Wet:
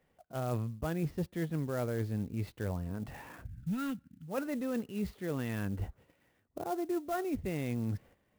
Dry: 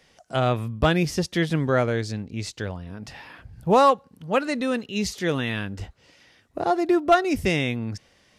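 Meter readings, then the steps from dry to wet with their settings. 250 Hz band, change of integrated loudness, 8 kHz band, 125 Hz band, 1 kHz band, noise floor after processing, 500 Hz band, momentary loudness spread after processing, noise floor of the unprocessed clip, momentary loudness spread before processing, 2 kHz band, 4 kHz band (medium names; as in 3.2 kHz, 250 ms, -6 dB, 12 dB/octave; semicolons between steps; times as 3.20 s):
-9.5 dB, -13.0 dB, -14.0 dB, -8.0 dB, -18.5 dB, -74 dBFS, -14.5 dB, 8 LU, -61 dBFS, 19 LU, -17.0 dB, -21.0 dB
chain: time-frequency box 3.46–4.28 s, 320–1300 Hz -28 dB; gate -53 dBFS, range -9 dB; reverse; compression 6:1, threshold -30 dBFS, peak gain reduction 16.5 dB; reverse; tape spacing loss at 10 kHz 40 dB; sampling jitter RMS 0.032 ms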